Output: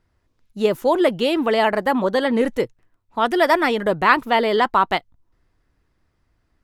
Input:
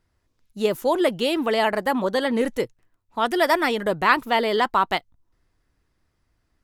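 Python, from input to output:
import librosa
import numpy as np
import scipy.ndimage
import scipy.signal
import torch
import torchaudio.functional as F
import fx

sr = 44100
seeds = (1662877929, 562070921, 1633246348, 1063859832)

y = fx.high_shelf(x, sr, hz=4500.0, db=-7.5)
y = y * 10.0 ** (3.5 / 20.0)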